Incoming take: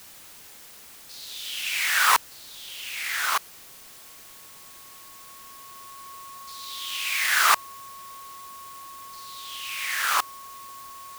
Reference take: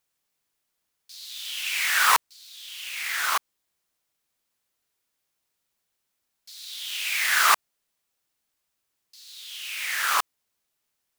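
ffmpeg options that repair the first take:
-af "bandreject=f=1.1k:w=30,afwtdn=0.0045"

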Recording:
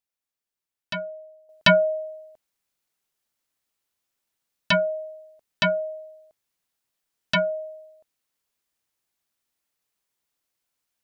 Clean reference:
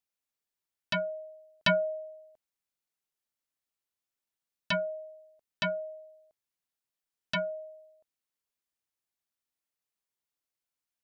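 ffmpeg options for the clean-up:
-af "asetnsamples=n=441:p=0,asendcmd='1.49 volume volume -9dB',volume=0dB"

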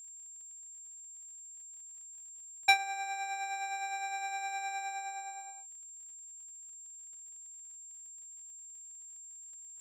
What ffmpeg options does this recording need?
-af "adeclick=t=4,bandreject=f=7.4k:w=30"

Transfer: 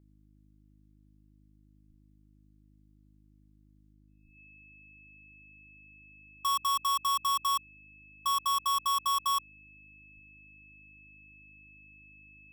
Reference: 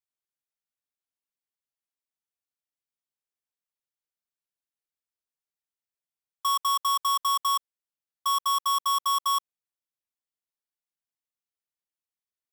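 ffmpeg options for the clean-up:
-filter_complex "[0:a]bandreject=f=51.5:t=h:w=4,bandreject=f=103:t=h:w=4,bandreject=f=154.5:t=h:w=4,bandreject=f=206:t=h:w=4,bandreject=f=257.5:t=h:w=4,bandreject=f=309:t=h:w=4,bandreject=f=2.6k:w=30,asplit=3[a][b][c];[a]afade=t=out:st=1.88:d=0.02[d];[b]highpass=f=140:w=0.5412,highpass=f=140:w=1.3066,afade=t=in:st=1.88:d=0.02,afade=t=out:st=2:d=0.02[e];[c]afade=t=in:st=2:d=0.02[f];[d][e][f]amix=inputs=3:normalize=0,asplit=3[g][h][i];[g]afade=t=out:st=4.23:d=0.02[j];[h]highpass=f=140:w=0.5412,highpass=f=140:w=1.3066,afade=t=in:st=4.23:d=0.02,afade=t=out:st=4.35:d=0.02[k];[i]afade=t=in:st=4.35:d=0.02[l];[j][k][l]amix=inputs=3:normalize=0,asplit=3[m][n][o];[m]afade=t=out:st=10.15:d=0.02[p];[n]highpass=f=140:w=0.5412,highpass=f=140:w=1.3066,afade=t=in:st=10.15:d=0.02,afade=t=out:st=10.27:d=0.02[q];[o]afade=t=in:st=10.27:d=0.02[r];[p][q][r]amix=inputs=3:normalize=0,asetnsamples=n=441:p=0,asendcmd='3.93 volume volume 3.5dB',volume=0dB"

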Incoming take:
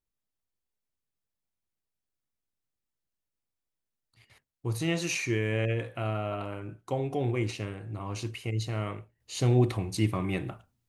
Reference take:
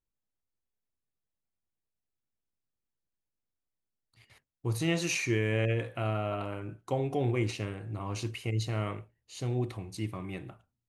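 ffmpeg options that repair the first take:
-af "asetnsamples=n=441:p=0,asendcmd='9.2 volume volume -8.5dB',volume=0dB"

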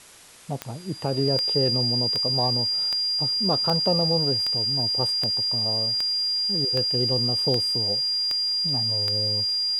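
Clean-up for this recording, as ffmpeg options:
-af "adeclick=t=4,bandreject=f=4.8k:w=30,afwtdn=0.0045"

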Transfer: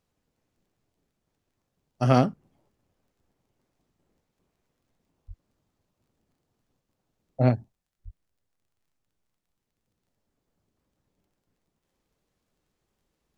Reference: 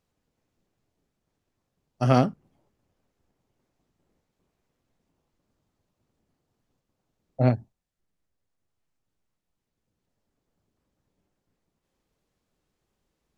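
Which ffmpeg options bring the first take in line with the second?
-filter_complex "[0:a]adeclick=t=4,asplit=3[a][b][c];[a]afade=t=out:st=5.27:d=0.02[d];[b]highpass=f=140:w=0.5412,highpass=f=140:w=1.3066,afade=t=in:st=5.27:d=0.02,afade=t=out:st=5.39:d=0.02[e];[c]afade=t=in:st=5.39:d=0.02[f];[d][e][f]amix=inputs=3:normalize=0,asplit=3[g][h][i];[g]afade=t=out:st=8.04:d=0.02[j];[h]highpass=f=140:w=0.5412,highpass=f=140:w=1.3066,afade=t=in:st=8.04:d=0.02,afade=t=out:st=8.16:d=0.02[k];[i]afade=t=in:st=8.16:d=0.02[l];[j][k][l]amix=inputs=3:normalize=0"

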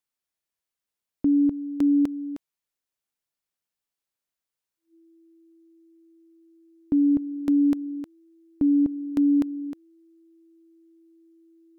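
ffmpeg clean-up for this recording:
-af "bandreject=f=330:w=30"

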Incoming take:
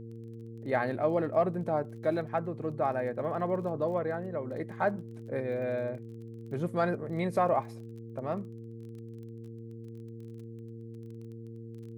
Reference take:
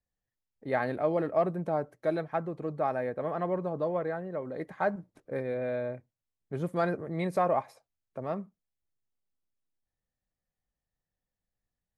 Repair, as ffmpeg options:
-af "adeclick=t=4,bandreject=f=114.4:t=h:w=4,bandreject=f=228.8:t=h:w=4,bandreject=f=343.2:t=h:w=4,bandreject=f=457.6:t=h:w=4"

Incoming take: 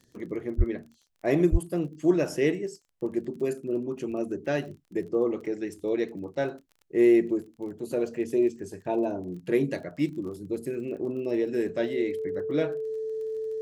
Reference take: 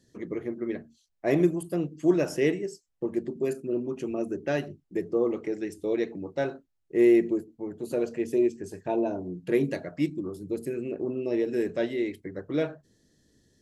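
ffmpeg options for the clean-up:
-filter_complex "[0:a]adeclick=t=4,bandreject=f=440:w=30,asplit=3[a][b][c];[a]afade=t=out:st=0.57:d=0.02[d];[b]highpass=f=140:w=0.5412,highpass=f=140:w=1.3066,afade=t=in:st=0.57:d=0.02,afade=t=out:st=0.69:d=0.02[e];[c]afade=t=in:st=0.69:d=0.02[f];[d][e][f]amix=inputs=3:normalize=0,asplit=3[g][h][i];[g]afade=t=out:st=1.51:d=0.02[j];[h]highpass=f=140:w=0.5412,highpass=f=140:w=1.3066,afade=t=in:st=1.51:d=0.02,afade=t=out:st=1.63:d=0.02[k];[i]afade=t=in:st=1.63:d=0.02[l];[j][k][l]amix=inputs=3:normalize=0"

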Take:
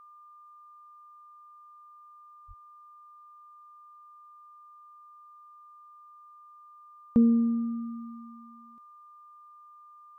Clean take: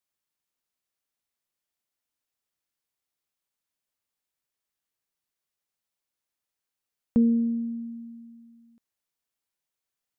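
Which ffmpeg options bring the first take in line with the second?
-filter_complex "[0:a]bandreject=f=1.2k:w=30,asplit=3[a][b][c];[a]afade=t=out:st=2.47:d=0.02[d];[b]highpass=f=140:w=0.5412,highpass=f=140:w=1.3066,afade=t=in:st=2.47:d=0.02,afade=t=out:st=2.59:d=0.02[e];[c]afade=t=in:st=2.59:d=0.02[f];[d][e][f]amix=inputs=3:normalize=0"

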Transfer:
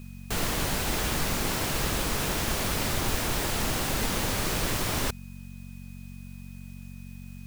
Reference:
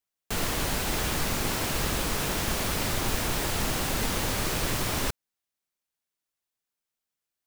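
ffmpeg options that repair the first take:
-af "bandreject=f=46.4:t=h:w=4,bandreject=f=92.8:t=h:w=4,bandreject=f=139.2:t=h:w=4,bandreject=f=185.6:t=h:w=4,bandreject=f=232:t=h:w=4,bandreject=f=2.5k:w=30,agate=range=-21dB:threshold=-34dB"

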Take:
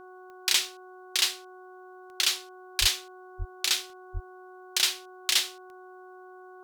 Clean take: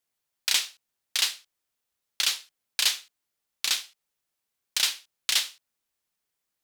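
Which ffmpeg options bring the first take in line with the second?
-filter_complex "[0:a]adeclick=t=4,bandreject=f=368.9:t=h:w=4,bandreject=f=737.8:t=h:w=4,bandreject=f=1.1067k:t=h:w=4,bandreject=f=1.4756k:t=h:w=4,asplit=3[a][b][c];[a]afade=t=out:st=2.8:d=0.02[d];[b]highpass=f=140:w=0.5412,highpass=f=140:w=1.3066,afade=t=in:st=2.8:d=0.02,afade=t=out:st=2.92:d=0.02[e];[c]afade=t=in:st=2.92:d=0.02[f];[d][e][f]amix=inputs=3:normalize=0,asplit=3[g][h][i];[g]afade=t=out:st=3.38:d=0.02[j];[h]highpass=f=140:w=0.5412,highpass=f=140:w=1.3066,afade=t=in:st=3.38:d=0.02,afade=t=out:st=3.5:d=0.02[k];[i]afade=t=in:st=3.5:d=0.02[l];[j][k][l]amix=inputs=3:normalize=0,asplit=3[m][n][o];[m]afade=t=out:st=4.13:d=0.02[p];[n]highpass=f=140:w=0.5412,highpass=f=140:w=1.3066,afade=t=in:st=4.13:d=0.02,afade=t=out:st=4.25:d=0.02[q];[o]afade=t=in:st=4.25:d=0.02[r];[p][q][r]amix=inputs=3:normalize=0"

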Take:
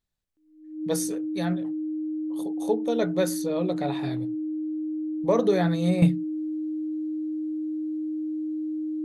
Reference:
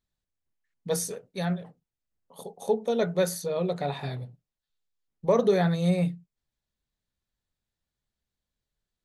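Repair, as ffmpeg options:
-af "bandreject=f=310:w=30,asetnsamples=n=441:p=0,asendcmd='6.02 volume volume -8.5dB',volume=0dB"

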